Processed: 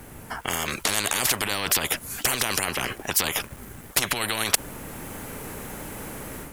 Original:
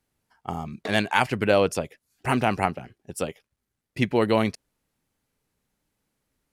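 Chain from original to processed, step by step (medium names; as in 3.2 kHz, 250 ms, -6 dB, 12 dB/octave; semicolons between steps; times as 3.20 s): peaking EQ 4.5 kHz -11.5 dB 1.3 oct; level rider gain up to 9 dB; loudness maximiser +23 dB; spectrum-flattening compressor 10:1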